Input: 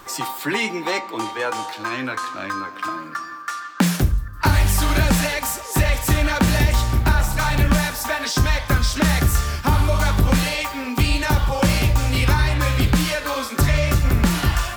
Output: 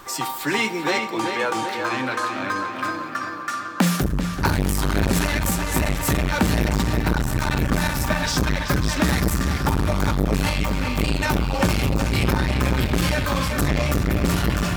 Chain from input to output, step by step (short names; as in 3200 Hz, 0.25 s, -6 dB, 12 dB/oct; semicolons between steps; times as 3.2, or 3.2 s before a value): darkening echo 0.385 s, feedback 61%, low-pass 4900 Hz, level -6 dB; reverb RT60 4.0 s, pre-delay 3 ms, DRR 16.5 dB; core saturation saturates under 360 Hz